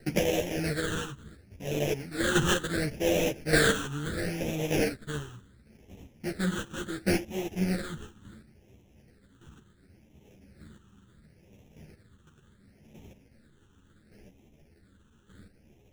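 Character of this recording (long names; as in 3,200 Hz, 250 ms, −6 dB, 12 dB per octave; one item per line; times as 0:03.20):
aliases and images of a low sample rate 1,100 Hz, jitter 20%
phaser sweep stages 8, 0.71 Hz, lowest notch 640–1,400 Hz
chopped level 0.85 Hz, depth 60%, duty 15%
a shimmering, thickened sound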